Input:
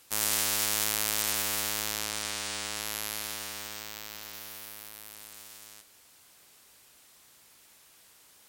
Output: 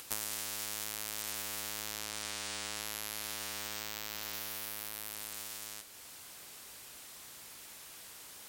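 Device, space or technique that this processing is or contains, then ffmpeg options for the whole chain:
upward and downward compression: -af "acompressor=mode=upward:threshold=-50dB:ratio=2.5,acompressor=threshold=-38dB:ratio=8,volume=5dB"

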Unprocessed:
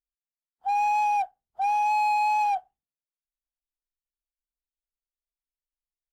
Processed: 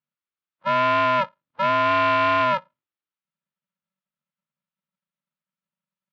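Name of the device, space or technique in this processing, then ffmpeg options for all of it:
ring modulator pedal into a guitar cabinet: -af "aeval=exprs='val(0)*sgn(sin(2*PI*190*n/s))':channel_layout=same,highpass=99,equalizer=frequency=220:width_type=q:width=4:gain=-6,equalizer=frequency=450:width_type=q:width=4:gain=-8,equalizer=frequency=710:width_type=q:width=4:gain=-5,equalizer=frequency=1300:width_type=q:width=4:gain=6,lowpass=frequency=3600:width=0.5412,lowpass=frequency=3600:width=1.3066,volume=4.5dB"

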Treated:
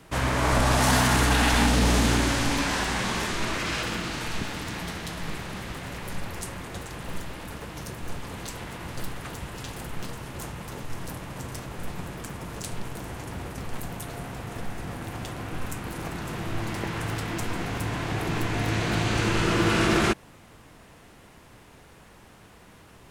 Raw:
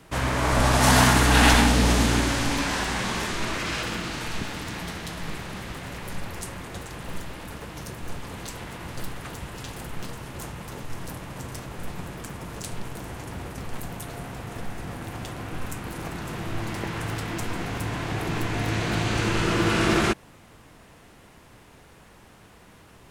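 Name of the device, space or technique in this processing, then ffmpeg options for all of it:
limiter into clipper: -af "alimiter=limit=-11.5dB:level=0:latency=1:release=28,asoftclip=type=hard:threshold=-13.5dB"

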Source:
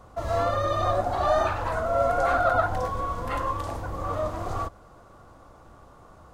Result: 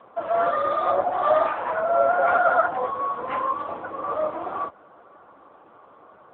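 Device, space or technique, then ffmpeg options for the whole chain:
telephone: -af "highpass=290,lowpass=3200,volume=5dB" -ar 8000 -c:a libopencore_amrnb -b:a 6700

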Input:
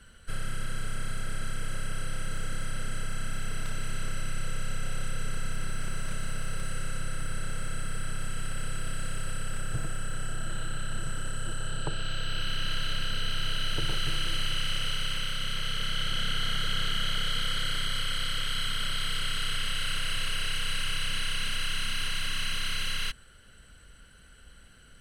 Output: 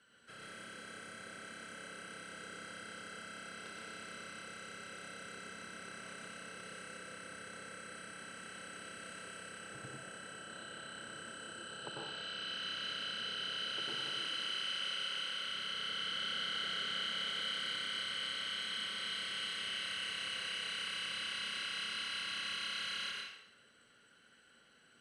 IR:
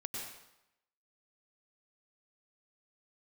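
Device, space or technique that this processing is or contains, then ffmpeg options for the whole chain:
supermarket ceiling speaker: -filter_complex "[0:a]asettb=1/sr,asplit=3[link_01][link_02][link_03];[link_01]atrim=end=13.734[link_04];[link_02]atrim=start=13.73:end=15.45,asetpts=PTS-STARTPTS,afade=type=in:duration=0.004:curve=qsin,afade=type=out:start_time=1.716:duration=0.004:curve=qsin,highpass=frequency=210:poles=1[link_05];[link_03]atrim=start=15.446[link_06];[link_04][link_05]acrossfade=duration=0.004:curve1=hsin:curve2=qsin[link_07];[link_07][link_06]acrossfade=duration=0.004:curve1=qsin:curve2=hsin,highpass=280,lowpass=6600[link_08];[1:a]atrim=start_sample=2205[link_09];[link_08][link_09]afir=irnorm=-1:irlink=0,volume=-6dB"

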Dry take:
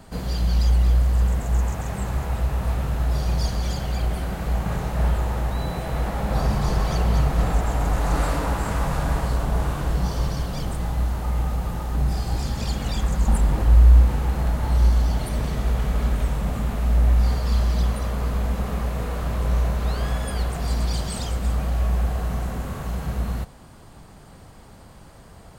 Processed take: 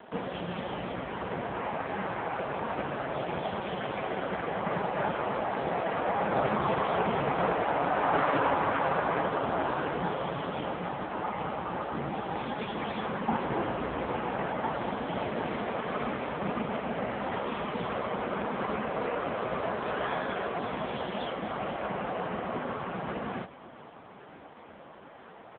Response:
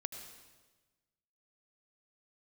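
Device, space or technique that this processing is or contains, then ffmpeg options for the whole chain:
satellite phone: -af "highpass=300,lowpass=3200,aecho=1:1:488:0.106,volume=6dB" -ar 8000 -c:a libopencore_amrnb -b:a 5150

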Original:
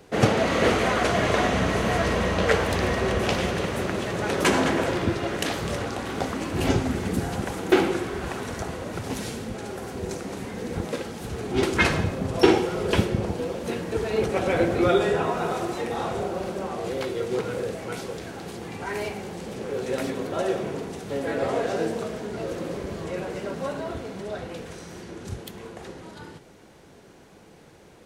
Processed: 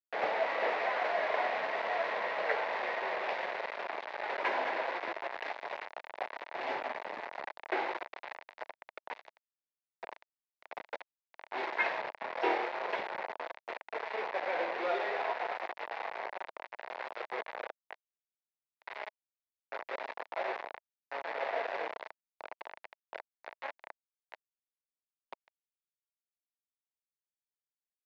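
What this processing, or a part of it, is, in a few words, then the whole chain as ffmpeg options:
hand-held game console: -filter_complex "[0:a]acrusher=bits=3:mix=0:aa=0.000001,highpass=400,equalizer=frequency=640:width_type=q:width=4:gain=5,equalizer=frequency=900:width_type=q:width=4:gain=5,equalizer=frequency=1300:width_type=q:width=4:gain=-5,equalizer=frequency=2000:width_type=q:width=4:gain=4,equalizer=frequency=3100:width_type=q:width=4:gain=-5,lowpass=frequency=4400:width=0.5412,lowpass=frequency=4400:width=1.3066,acrossover=split=480 3000:gain=0.2 1 0.178[link_01][link_02][link_03];[link_01][link_02][link_03]amix=inputs=3:normalize=0,asettb=1/sr,asplit=3[link_04][link_05][link_06];[link_04]atrim=end=12.154[link_07];[link_05]atrim=start=12.15:end=12.86,asetpts=PTS-STARTPTS,afade=type=in:duration=0.004:curve=qsin,afade=type=out:start_time=0.706:duration=0.004:curve=qsin,asplit=2[link_08][link_09];[link_09]adelay=25,volume=-3dB[link_10];[link_08][link_10]amix=inputs=2:normalize=0,atrim=end_sample=31311[link_11];[link_06]atrim=start=12.856[link_12];[link_07][link_11]acrossfade=duration=0.004:curve1=hsin:curve2=qsin[link_13];[link_13][link_12]acrossfade=duration=0.004:curve1=qsin:curve2=hsin,volume=-9dB"

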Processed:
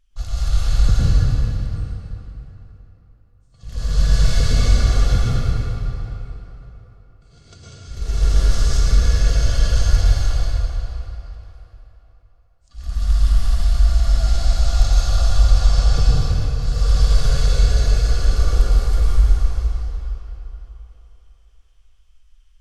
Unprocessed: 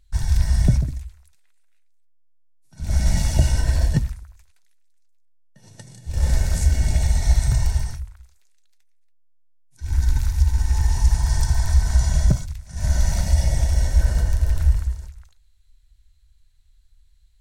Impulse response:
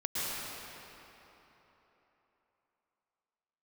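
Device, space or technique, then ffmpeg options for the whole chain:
slowed and reverbed: -filter_complex "[0:a]asetrate=33957,aresample=44100[link_01];[1:a]atrim=start_sample=2205[link_02];[link_01][link_02]afir=irnorm=-1:irlink=0,volume=-2.5dB"

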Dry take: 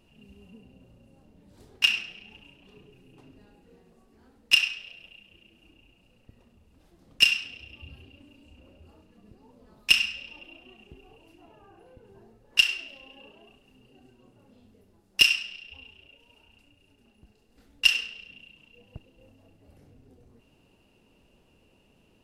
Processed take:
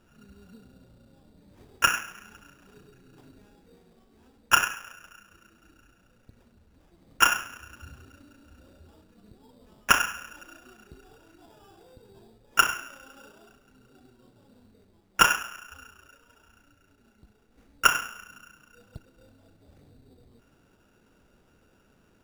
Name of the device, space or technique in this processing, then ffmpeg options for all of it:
crushed at another speed: -af "asetrate=22050,aresample=44100,acrusher=samples=21:mix=1:aa=0.000001,asetrate=88200,aresample=44100"

